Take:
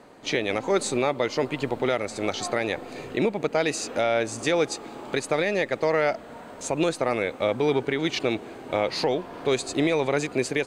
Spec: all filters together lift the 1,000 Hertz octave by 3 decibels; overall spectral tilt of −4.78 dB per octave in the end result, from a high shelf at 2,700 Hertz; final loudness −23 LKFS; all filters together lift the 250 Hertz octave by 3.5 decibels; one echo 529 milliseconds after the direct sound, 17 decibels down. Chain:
parametric band 250 Hz +4.5 dB
parametric band 1,000 Hz +5 dB
high-shelf EQ 2,700 Hz −8 dB
single-tap delay 529 ms −17 dB
level +1.5 dB

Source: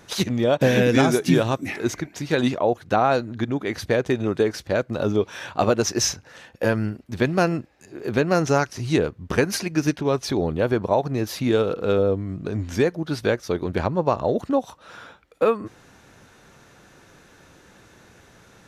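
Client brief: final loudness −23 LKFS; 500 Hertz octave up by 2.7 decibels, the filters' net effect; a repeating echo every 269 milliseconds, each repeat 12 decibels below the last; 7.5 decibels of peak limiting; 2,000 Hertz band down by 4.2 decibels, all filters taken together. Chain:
parametric band 500 Hz +3.5 dB
parametric band 2,000 Hz −6 dB
brickwall limiter −12 dBFS
repeating echo 269 ms, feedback 25%, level −12 dB
level +0.5 dB

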